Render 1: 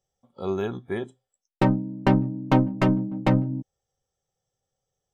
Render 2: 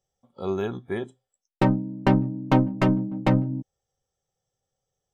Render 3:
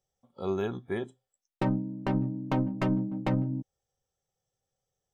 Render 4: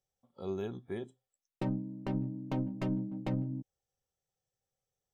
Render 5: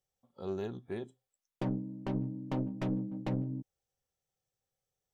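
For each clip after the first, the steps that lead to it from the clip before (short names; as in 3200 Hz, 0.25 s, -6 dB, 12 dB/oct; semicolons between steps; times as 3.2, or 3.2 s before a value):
nothing audible
limiter -15.5 dBFS, peak gain reduction 10 dB; gain -3 dB
dynamic EQ 1300 Hz, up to -7 dB, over -48 dBFS, Q 0.83; gain -5.5 dB
Doppler distortion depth 0.28 ms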